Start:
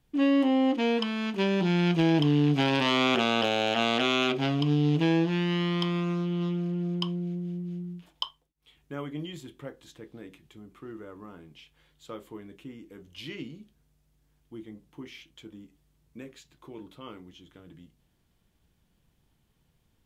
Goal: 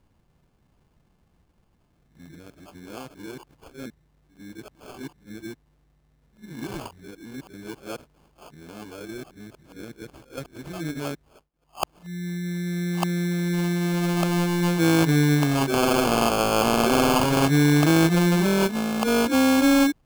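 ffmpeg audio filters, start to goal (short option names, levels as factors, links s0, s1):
-af "areverse,acrusher=samples=23:mix=1:aa=0.000001,volume=1.78"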